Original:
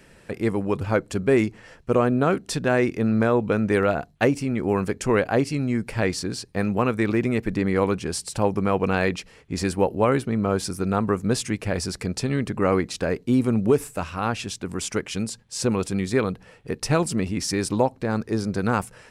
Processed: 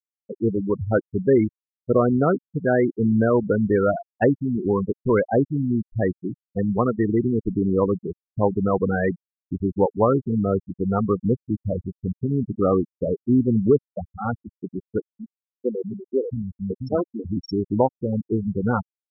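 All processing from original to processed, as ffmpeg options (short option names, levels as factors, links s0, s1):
-filter_complex "[0:a]asettb=1/sr,asplit=3[s0][s1][s2];[s0]atrim=end=15.124[s3];[s1]atrim=start=15.12:end=17.25,asetpts=PTS-STARTPTS,afade=t=in:d=0.004:c=qsin,afade=t=out:st=2.126:d=0.004:c=qsin,lowshelf=f=190:g=-2,acrossover=split=230|1400[s4][s5][s6];[s6]adelay=30[s7];[s4]adelay=680[s8];[s8][s5][s7]amix=inputs=3:normalize=0,atrim=end_sample=93933[s9];[s2]atrim=start=17.246[s10];[s3][s9]acrossfade=d=0.004:c1=hsin:c2=qsin[s11];[s11][s10]acrossfade=d=0.004:c1=qsin:c2=hsin,afftfilt=real='re*gte(hypot(re,im),0.224)':imag='im*gte(hypot(re,im),0.224)':win_size=1024:overlap=0.75,equalizer=f=2600:w=6.1:g=-6,volume=1.26"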